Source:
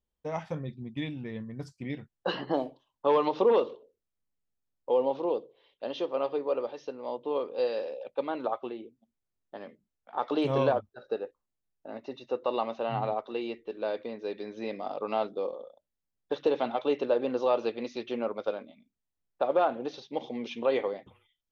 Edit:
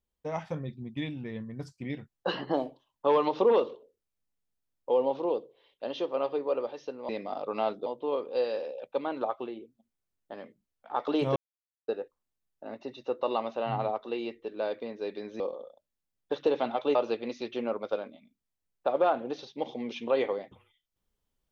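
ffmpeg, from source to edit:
ffmpeg -i in.wav -filter_complex "[0:a]asplit=7[link_01][link_02][link_03][link_04][link_05][link_06][link_07];[link_01]atrim=end=7.092[link_08];[link_02]atrim=start=14.628:end=15.402[link_09];[link_03]atrim=start=7.088:end=10.59,asetpts=PTS-STARTPTS,afade=type=out:start_time=3.498:duration=0.004:curve=hsin[link_10];[link_04]atrim=start=10.59:end=11.11,asetpts=PTS-STARTPTS,volume=0[link_11];[link_05]atrim=start=11.11:end=14.632,asetpts=PTS-STARTPTS,afade=type=in:duration=0.004:curve=hsin[link_12];[link_06]atrim=start=15.398:end=16.952[link_13];[link_07]atrim=start=17.498[link_14];[link_08][link_09]acrossfade=duration=0.004:curve1=hsin:curve2=hsin[link_15];[link_10][link_11][link_12]concat=n=3:v=0:a=1[link_16];[link_15][link_16]acrossfade=duration=0.004:curve1=hsin:curve2=hsin[link_17];[link_17][link_13]acrossfade=duration=0.004:curve1=hsin:curve2=hsin[link_18];[link_18][link_14]acrossfade=duration=0.004:curve1=hsin:curve2=hsin" out.wav

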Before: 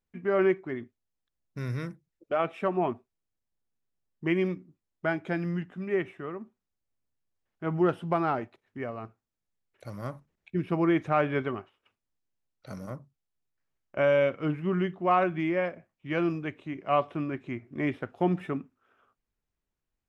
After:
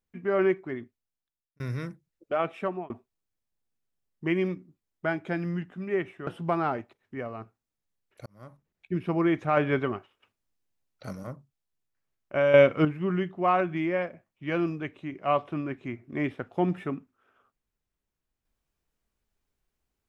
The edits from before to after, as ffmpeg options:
ffmpeg -i in.wav -filter_complex "[0:a]asplit=9[link_01][link_02][link_03][link_04][link_05][link_06][link_07][link_08][link_09];[link_01]atrim=end=1.6,asetpts=PTS-STARTPTS,afade=type=out:start_time=0.73:duration=0.87[link_10];[link_02]atrim=start=1.6:end=2.9,asetpts=PTS-STARTPTS,afade=type=in:duration=0.004:curve=hsin,afade=type=out:start_time=0.9:duration=0.4:curve=qsin[link_11];[link_03]atrim=start=2.9:end=6.272,asetpts=PTS-STARTPTS,afade=type=in:duration=0.004:curve=hsin[link_12];[link_04]atrim=start=7.898:end=9.89,asetpts=PTS-STARTPTS,afade=type=out:start_time=1.988:duration=0.004:curve=hsin[link_13];[link_05]atrim=start=9.89:end=11.202,asetpts=PTS-STARTPTS,afade=type=in:duration=0.66[link_14];[link_06]atrim=start=11.198:end=12.762,asetpts=PTS-STARTPTS,volume=3dB[link_15];[link_07]atrim=start=12.758:end=14.172[link_16];[link_08]atrim=start=14.168:end=14.482,asetpts=PTS-STARTPTS,volume=8dB[link_17];[link_09]atrim=start=14.478[link_18];[link_10][link_11][link_12]concat=n=3:v=0:a=1[link_19];[link_13][link_14]concat=n=2:v=0:a=1[link_20];[link_19][link_20]acrossfade=duration=0.004:curve1=hsin:curve2=hsin[link_21];[link_21][link_15]acrossfade=duration=0.004:curve1=hsin:curve2=hsin[link_22];[link_22][link_16]acrossfade=duration=0.004:curve1=hsin:curve2=hsin[link_23];[link_23][link_17]acrossfade=duration=0.004:curve1=hsin:curve2=hsin[link_24];[link_24][link_18]acrossfade=duration=0.004:curve1=hsin:curve2=hsin" out.wav

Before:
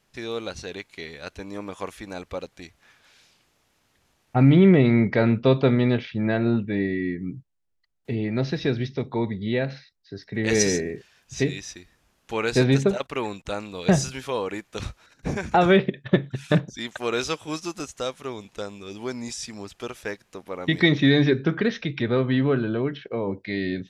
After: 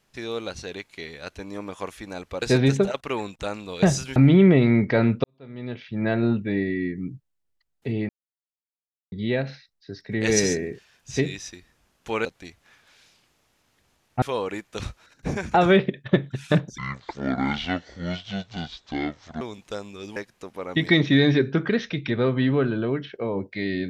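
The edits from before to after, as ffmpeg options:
ffmpeg -i in.wav -filter_complex "[0:a]asplit=11[link_01][link_02][link_03][link_04][link_05][link_06][link_07][link_08][link_09][link_10][link_11];[link_01]atrim=end=2.422[link_12];[link_02]atrim=start=12.478:end=14.222[link_13];[link_03]atrim=start=4.388:end=5.47,asetpts=PTS-STARTPTS,afade=type=out:start_time=1.078:duration=0.004:curve=hsin[link_14];[link_04]atrim=start=5.47:end=8.32,asetpts=PTS-STARTPTS,afade=type=in:duration=0.86:curve=qua,afade=type=out:start_time=2.846:duration=0.004:curve=hsin[link_15];[link_05]atrim=start=8.32:end=9.35,asetpts=PTS-STARTPTS,volume=0[link_16];[link_06]atrim=start=9.35:end=12.482,asetpts=PTS-STARTPTS,afade=type=in:duration=0.004:curve=hsin[link_17];[link_07]atrim=start=2.418:end=4.392[link_18];[link_08]atrim=start=14.218:end=16.784[link_19];[link_09]atrim=start=16.78:end=18.28,asetpts=PTS-STARTPTS,asetrate=25137,aresample=44100[link_20];[link_10]atrim=start=18.276:end=19.032[link_21];[link_11]atrim=start=20.078[link_22];[link_12][link_13]acrossfade=duration=0.004:curve1=hsin:curve2=hsin[link_23];[link_14][link_15][link_16][link_17]concat=n=4:v=0:a=1[link_24];[link_23][link_24]acrossfade=duration=0.004:curve1=hsin:curve2=hsin[link_25];[link_25][link_18]acrossfade=duration=0.004:curve1=hsin:curve2=hsin[link_26];[link_26][link_19]acrossfade=duration=0.004:curve1=hsin:curve2=hsin[link_27];[link_27][link_20]acrossfade=duration=0.004:curve1=hsin:curve2=hsin[link_28];[link_28][link_21]acrossfade=duration=0.004:curve1=hsin:curve2=hsin[link_29];[link_29][link_22]acrossfade=duration=0.004:curve1=hsin:curve2=hsin" out.wav

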